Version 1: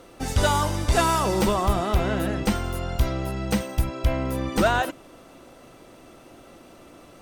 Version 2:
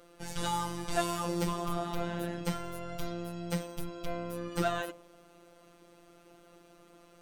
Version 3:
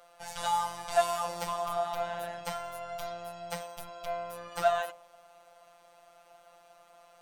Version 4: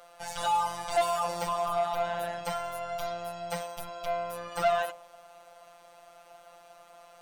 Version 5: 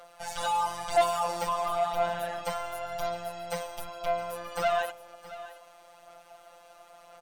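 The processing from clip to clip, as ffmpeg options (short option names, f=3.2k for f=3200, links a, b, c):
-af "bandreject=f=58.64:t=h:w=4,bandreject=f=117.28:t=h:w=4,bandreject=f=175.92:t=h:w=4,bandreject=f=234.56:t=h:w=4,bandreject=f=293.2:t=h:w=4,bandreject=f=351.84:t=h:w=4,bandreject=f=410.48:t=h:w=4,bandreject=f=469.12:t=h:w=4,bandreject=f=527.76:t=h:w=4,bandreject=f=586.4:t=h:w=4,bandreject=f=645.04:t=h:w=4,bandreject=f=703.68:t=h:w=4,bandreject=f=762.32:t=h:w=4,bandreject=f=820.96:t=h:w=4,bandreject=f=879.6:t=h:w=4,bandreject=f=938.24:t=h:w=4,bandreject=f=996.88:t=h:w=4,bandreject=f=1.05552k:t=h:w=4,bandreject=f=1.11416k:t=h:w=4,bandreject=f=1.1728k:t=h:w=4,afftfilt=real='hypot(re,im)*cos(PI*b)':imag='0':win_size=1024:overlap=0.75,volume=-6.5dB"
-af "lowshelf=f=490:t=q:w=3:g=-11.5"
-af "asoftclip=type=tanh:threshold=-24dB,volume=4.5dB"
-af "aphaser=in_gain=1:out_gain=1:delay=4:decay=0.32:speed=0.98:type=sinusoidal,aecho=1:1:670:0.168"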